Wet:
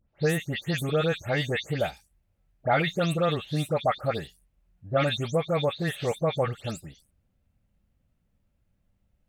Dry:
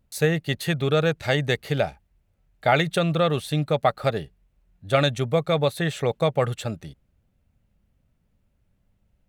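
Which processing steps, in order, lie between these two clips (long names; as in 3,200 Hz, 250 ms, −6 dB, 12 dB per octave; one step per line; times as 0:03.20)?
every frequency bin delayed by itself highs late, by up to 172 ms
level −3.5 dB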